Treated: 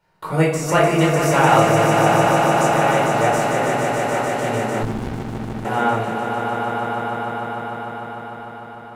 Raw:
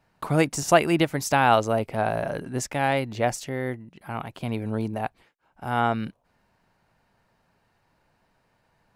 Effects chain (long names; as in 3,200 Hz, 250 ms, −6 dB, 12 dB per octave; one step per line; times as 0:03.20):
low-shelf EQ 130 Hz −9 dB
rectangular room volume 680 cubic metres, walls furnished, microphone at 4.6 metres
dynamic equaliser 4,500 Hz, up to −5 dB, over −38 dBFS, Q 1.2
on a send: echo that builds up and dies away 150 ms, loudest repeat 5, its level −6.5 dB
0:04.83–0:05.65: on the sum: windowed peak hold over 65 samples
level −2.5 dB